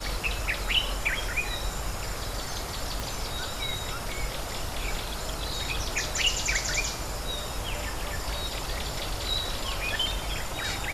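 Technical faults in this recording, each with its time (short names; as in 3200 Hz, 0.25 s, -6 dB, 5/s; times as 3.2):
3 pop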